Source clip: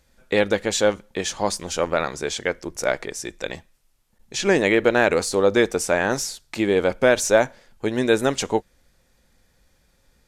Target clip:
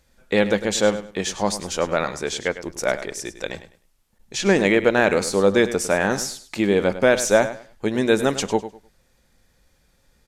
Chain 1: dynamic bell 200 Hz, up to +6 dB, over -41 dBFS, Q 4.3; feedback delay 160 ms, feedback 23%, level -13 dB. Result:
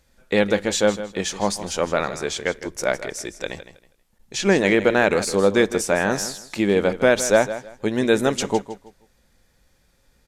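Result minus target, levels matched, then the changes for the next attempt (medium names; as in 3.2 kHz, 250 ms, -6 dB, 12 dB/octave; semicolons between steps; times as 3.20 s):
echo 58 ms late
change: feedback delay 102 ms, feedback 23%, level -13 dB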